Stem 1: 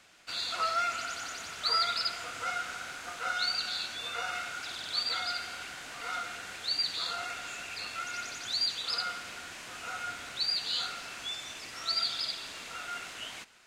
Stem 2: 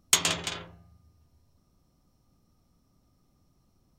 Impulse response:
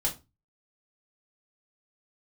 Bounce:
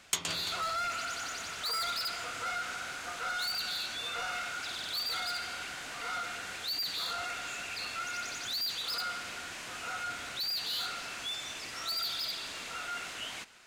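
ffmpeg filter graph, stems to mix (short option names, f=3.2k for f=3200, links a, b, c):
-filter_complex "[0:a]asoftclip=type=tanh:threshold=-33.5dB,volume=2.5dB[a];[1:a]volume=-9.5dB[b];[a][b]amix=inputs=2:normalize=0"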